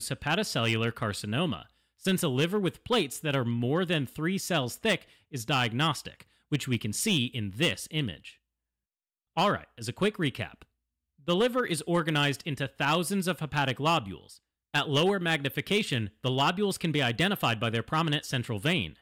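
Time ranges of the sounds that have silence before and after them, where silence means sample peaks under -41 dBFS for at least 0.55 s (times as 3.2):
9.37–10.62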